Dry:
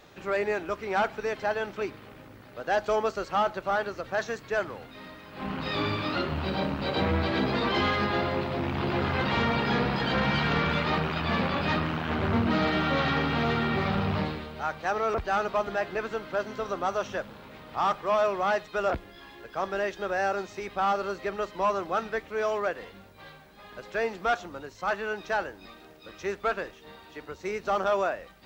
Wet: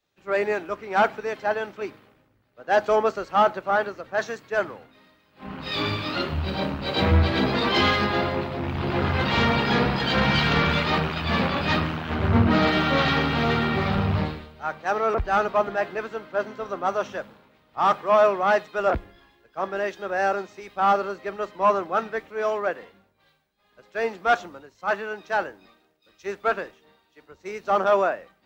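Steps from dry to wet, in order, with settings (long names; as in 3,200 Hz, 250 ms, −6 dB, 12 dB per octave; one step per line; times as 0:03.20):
multiband upward and downward expander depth 100%
level +4 dB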